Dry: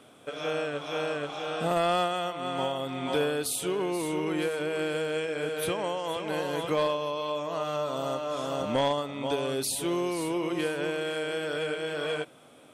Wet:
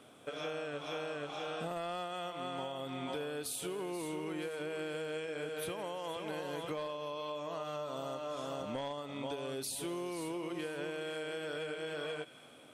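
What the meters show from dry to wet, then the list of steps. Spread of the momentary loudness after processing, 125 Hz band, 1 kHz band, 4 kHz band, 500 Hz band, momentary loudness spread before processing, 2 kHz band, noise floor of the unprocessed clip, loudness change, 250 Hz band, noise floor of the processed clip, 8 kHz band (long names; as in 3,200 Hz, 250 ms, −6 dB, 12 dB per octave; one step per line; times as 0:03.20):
2 LU, −9.5 dB, −10.5 dB, −9.0 dB, −10.0 dB, 5 LU, −9.0 dB, −54 dBFS, −10.0 dB, −9.5 dB, −56 dBFS, −8.5 dB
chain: on a send: delay with a high-pass on its return 83 ms, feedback 81%, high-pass 2,200 Hz, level −18.5 dB
on the sum: downward compressor, threshold −33 dBFS, peak gain reduction 10.5 dB
level −3.5 dB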